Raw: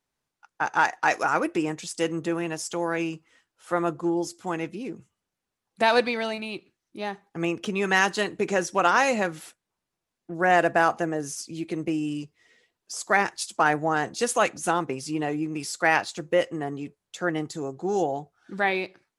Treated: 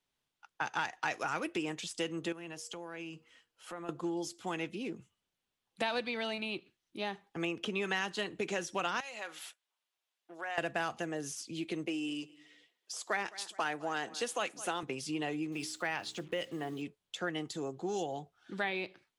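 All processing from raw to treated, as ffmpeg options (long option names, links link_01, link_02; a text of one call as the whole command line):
ffmpeg -i in.wav -filter_complex "[0:a]asettb=1/sr,asplit=3[link_01][link_02][link_03];[link_01]atrim=end=2.324[link_04];[link_02]atrim=start=2.32:end=3.89,asetpts=PTS-STARTPTS,afade=type=in:duration=0.004:curve=qsin,afade=type=out:start_time=1.566:duration=0.004:curve=qsin,bandreject=frequency=3600:width=13,bandreject=frequency=118.6:width_type=h:width=4,bandreject=frequency=237.2:width_type=h:width=4,bandreject=frequency=355.8:width_type=h:width=4,bandreject=frequency=474.4:width_type=h:width=4,acompressor=threshold=-40dB:ratio=3:attack=3.2:release=140:knee=1:detection=peak[link_05];[link_03]atrim=start=3.886[link_06];[link_04][link_05]acrossfade=duration=0.004:curve1=hsin:curve2=qsin[link_07];[link_07][link_06]acrossfade=duration=0.004:curve1=qsin:curve2=hsin,asettb=1/sr,asplit=3[link_08][link_09][link_10];[link_08]atrim=end=9.004[link_11];[link_09]atrim=start=9:end=10.58,asetpts=PTS-STARTPTS,afade=type=in:duration=0.004:curve=qsin,afade=type=out:start_time=1.576:duration=0.004:curve=qsin,acompressor=threshold=-28dB:ratio=12:attack=3.2:release=140:knee=1:detection=peak,highpass=670[link_12];[link_10]atrim=start=10.576[link_13];[link_11][link_12]acrossfade=duration=0.004:curve1=hsin:curve2=qsin[link_14];[link_14][link_13]acrossfade=duration=0.004:curve1=qsin:curve2=hsin,asettb=1/sr,asplit=3[link_15][link_16][link_17];[link_15]atrim=end=11.864[link_18];[link_16]atrim=start=11.86:end=14.83,asetpts=PTS-STARTPTS,afade=type=in:duration=0.004:curve=qsin,afade=type=out:start_time=2.966:duration=0.004:curve=qsin,highpass=300,aecho=1:1:208|416:0.0708|0.0205,atrim=end_sample=130977[link_19];[link_17]atrim=start=14.826[link_20];[link_18][link_19]acrossfade=duration=0.004:curve1=hsin:curve2=qsin[link_21];[link_21][link_20]acrossfade=duration=0.004:curve1=qsin:curve2=hsin,asettb=1/sr,asplit=3[link_22][link_23][link_24];[link_22]atrim=end=15.524[link_25];[link_23]atrim=start=15.52:end=16.82,asetpts=PTS-STARTPTS,afade=type=in:duration=0.004:curve=qsin,afade=type=out:start_time=1.296:duration=0.004:curve=qsin,bandreject=frequency=62.27:width_type=h:width=4,bandreject=frequency=124.54:width_type=h:width=4,bandreject=frequency=186.81:width_type=h:width=4,bandreject=frequency=249.08:width_type=h:width=4,bandreject=frequency=311.35:width_type=h:width=4,bandreject=frequency=373.62:width_type=h:width=4,bandreject=frequency=435.89:width_type=h:width=4,acompressor=threshold=-30dB:ratio=1.5:attack=3.2:release=140:knee=1:detection=peak,acrusher=bits=8:mix=0:aa=0.5[link_26];[link_24]atrim=start=16.816[link_27];[link_25][link_26]acrossfade=duration=0.004:curve1=hsin:curve2=qsin[link_28];[link_28][link_27]acrossfade=duration=0.004:curve1=qsin:curve2=hsin,equalizer=frequency=3200:width=1.8:gain=8.5,acrossover=split=210|2100[link_29][link_30][link_31];[link_29]acompressor=threshold=-44dB:ratio=4[link_32];[link_30]acompressor=threshold=-30dB:ratio=4[link_33];[link_31]acompressor=threshold=-36dB:ratio=4[link_34];[link_32][link_33][link_34]amix=inputs=3:normalize=0,volume=-4.5dB" out.wav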